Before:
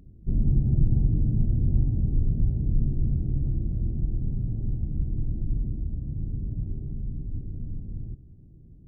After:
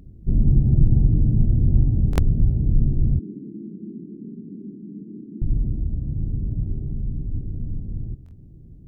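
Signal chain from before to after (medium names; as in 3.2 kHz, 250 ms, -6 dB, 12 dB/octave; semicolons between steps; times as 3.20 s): 3.19–5.42 s: elliptic band-pass 190–420 Hz, stop band 50 dB; buffer glitch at 2.11/8.24 s, samples 1024, times 2; trim +5.5 dB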